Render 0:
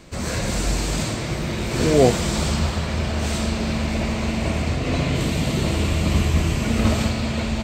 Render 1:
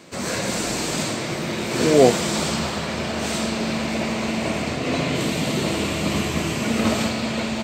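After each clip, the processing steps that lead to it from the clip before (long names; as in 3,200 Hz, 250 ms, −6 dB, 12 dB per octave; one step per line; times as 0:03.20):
high-pass filter 190 Hz 12 dB per octave
level +2 dB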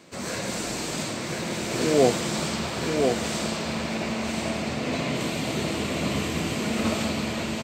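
single-tap delay 1,029 ms −4 dB
level −5.5 dB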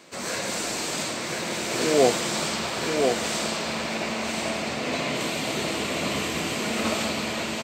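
low-shelf EQ 250 Hz −11.5 dB
level +3 dB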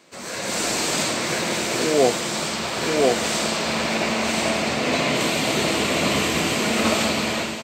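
automatic gain control gain up to 10 dB
level −3.5 dB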